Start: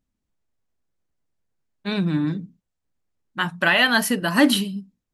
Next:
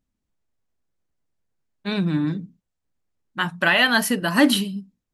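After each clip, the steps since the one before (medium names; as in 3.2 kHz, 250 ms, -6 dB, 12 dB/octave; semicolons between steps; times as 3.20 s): no audible change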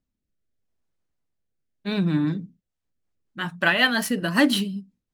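median filter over 3 samples; rotary cabinet horn 0.8 Hz, later 5.5 Hz, at 2.36 s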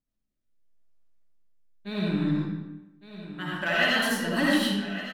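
saturation -9.5 dBFS, distortion -20 dB; delay 1160 ms -13.5 dB; algorithmic reverb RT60 1 s, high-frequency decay 0.8×, pre-delay 35 ms, DRR -6 dB; trim -8.5 dB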